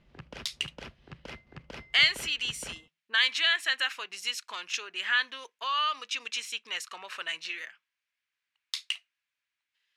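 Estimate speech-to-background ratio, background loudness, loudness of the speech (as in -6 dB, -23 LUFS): 17.5 dB, -47.0 LUFS, -29.5 LUFS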